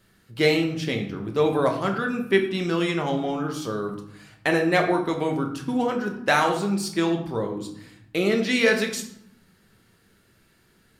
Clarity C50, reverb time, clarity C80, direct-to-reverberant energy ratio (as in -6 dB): 8.0 dB, 0.85 s, 11.0 dB, 2.5 dB